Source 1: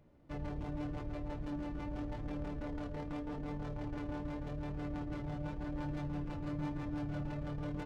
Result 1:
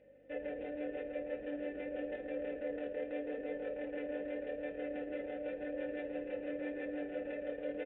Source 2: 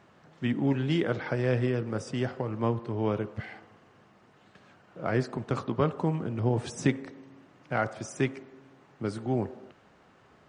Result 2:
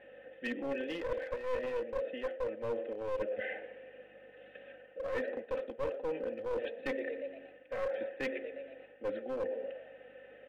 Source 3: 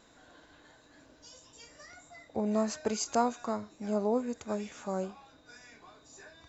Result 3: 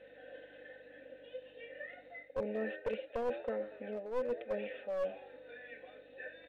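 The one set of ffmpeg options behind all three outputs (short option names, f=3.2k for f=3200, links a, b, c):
-filter_complex "[0:a]equalizer=f=140:w=2.7:g=-12,aresample=8000,aresample=44100,aecho=1:1:3.9:0.74,asplit=2[a][b];[b]asplit=5[c][d][e][f][g];[c]adelay=118,afreqshift=98,volume=-20dB[h];[d]adelay=236,afreqshift=196,volume=-24.9dB[i];[e]adelay=354,afreqshift=294,volume=-29.8dB[j];[f]adelay=472,afreqshift=392,volume=-34.6dB[k];[g]adelay=590,afreqshift=490,volume=-39.5dB[l];[h][i][j][k][l]amix=inputs=5:normalize=0[m];[a][m]amix=inputs=2:normalize=0,aeval=exprs='val(0)+0.00141*(sin(2*PI*50*n/s)+sin(2*PI*2*50*n/s)/2+sin(2*PI*3*50*n/s)/3+sin(2*PI*4*50*n/s)/4+sin(2*PI*5*50*n/s)/5)':c=same,asplit=3[n][o][p];[n]bandpass=f=530:t=q:w=8,volume=0dB[q];[o]bandpass=f=1.84k:t=q:w=8,volume=-6dB[r];[p]bandpass=f=2.48k:t=q:w=8,volume=-9dB[s];[q][r][s]amix=inputs=3:normalize=0,aeval=exprs='clip(val(0),-1,0.0112)':c=same,areverse,acompressor=threshold=-48dB:ratio=5,areverse,volume=14dB"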